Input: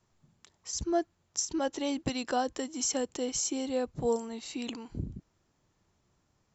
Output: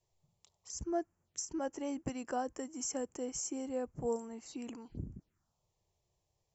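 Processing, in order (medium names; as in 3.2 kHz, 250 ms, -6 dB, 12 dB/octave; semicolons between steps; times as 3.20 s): touch-sensitive phaser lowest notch 230 Hz, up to 3.8 kHz, full sweep at -36 dBFS; trim -6 dB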